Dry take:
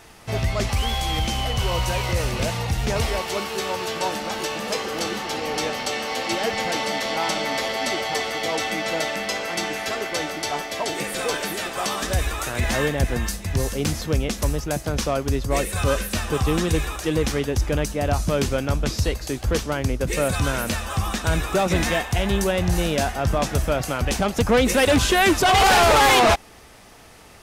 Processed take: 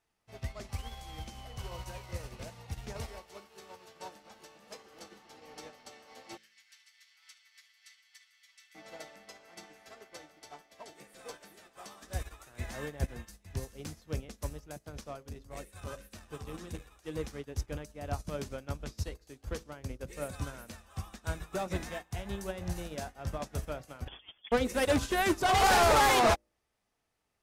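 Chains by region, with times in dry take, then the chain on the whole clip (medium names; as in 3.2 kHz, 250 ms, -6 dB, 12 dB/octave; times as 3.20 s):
6.37–8.75 s: inverse Chebyshev high-pass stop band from 390 Hz, stop band 70 dB + delay 76 ms -13.5 dB
15.01–16.91 s: hum notches 60/120/180/240/300/360/420/480/540 Hz + transformer saturation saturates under 200 Hz
24.08–24.52 s: frequency inversion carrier 3.4 kHz + compressor with a negative ratio -24 dBFS, ratio -0.5
whole clip: de-hum 54.93 Hz, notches 11; dynamic bell 2.9 kHz, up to -4 dB, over -35 dBFS, Q 1.5; upward expansion 2.5:1, over -33 dBFS; trim -6.5 dB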